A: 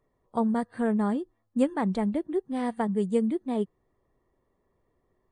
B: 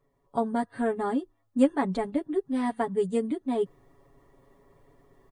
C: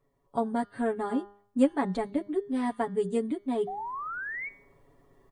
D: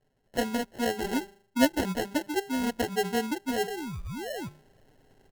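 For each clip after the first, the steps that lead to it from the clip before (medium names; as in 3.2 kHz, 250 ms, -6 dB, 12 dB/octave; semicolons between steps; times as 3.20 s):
reverse; upward compressor, threshold -48 dBFS; reverse; comb 7.2 ms, depth 98%; trim -1.5 dB
painted sound rise, 3.67–4.49 s, 720–2300 Hz -34 dBFS; de-hum 202.9 Hz, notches 33; trim -1.5 dB
sample-and-hold 37×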